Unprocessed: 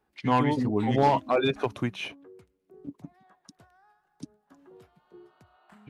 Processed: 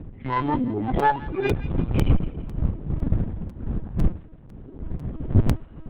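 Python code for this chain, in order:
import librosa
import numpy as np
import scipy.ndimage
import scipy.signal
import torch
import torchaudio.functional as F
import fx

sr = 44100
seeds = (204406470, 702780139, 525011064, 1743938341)

y = fx.hpss_only(x, sr, part='harmonic')
y = fx.dmg_wind(y, sr, seeds[0], corner_hz=120.0, level_db=-26.0)
y = fx.lpc_vocoder(y, sr, seeds[1], excitation='pitch_kept', order=10)
y = fx.tube_stage(y, sr, drive_db=17.0, bias=0.65)
y = fx.echo_wet_highpass(y, sr, ms=168, feedback_pct=42, hz=1500.0, wet_db=-13.5)
y = fx.buffer_crackle(y, sr, first_s=0.99, period_s=0.5, block=256, kind='repeat')
y = F.gain(torch.from_numpy(y), 7.5).numpy()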